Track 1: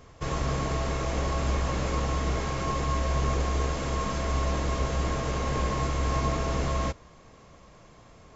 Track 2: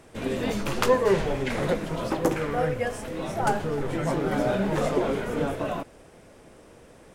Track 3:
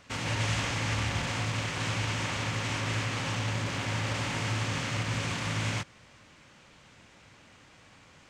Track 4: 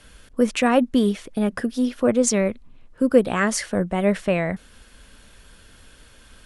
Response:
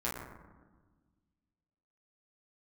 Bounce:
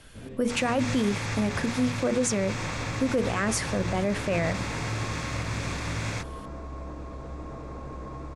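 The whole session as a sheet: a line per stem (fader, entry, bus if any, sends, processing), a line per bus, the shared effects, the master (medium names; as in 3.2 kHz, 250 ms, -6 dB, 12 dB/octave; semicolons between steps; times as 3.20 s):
-9.0 dB, 2.35 s, no send, peaking EQ 300 Hz +7 dB 0.29 oct; peak limiter -20 dBFS, peak gain reduction 6.5 dB; low-pass 1.4 kHz 24 dB/octave
-12.0 dB, 0.00 s, no send, Bessel low-pass 4.5 kHz; peaking EQ 95 Hz +12.5 dB 2.2 oct; auto duck -12 dB, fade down 0.65 s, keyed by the fourth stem
-0.5 dB, 0.40 s, no send, band-stop 3 kHz, Q 5.3
-2.0 dB, 0.00 s, no send, hum notches 60/120/180/240/300/360/420/480 Hz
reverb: none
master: peak limiter -16.5 dBFS, peak gain reduction 10.5 dB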